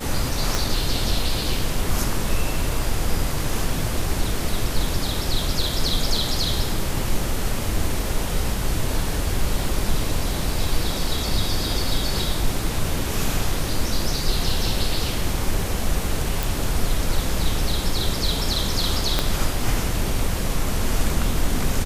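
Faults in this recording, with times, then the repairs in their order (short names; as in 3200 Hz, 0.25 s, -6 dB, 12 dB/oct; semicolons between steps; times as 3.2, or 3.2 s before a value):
0.55 pop
16.43 pop
19.19 pop -4 dBFS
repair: de-click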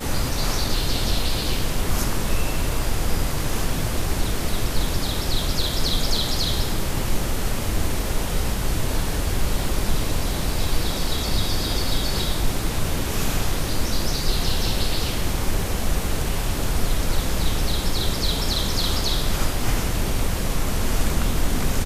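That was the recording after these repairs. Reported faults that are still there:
0.55 pop
19.19 pop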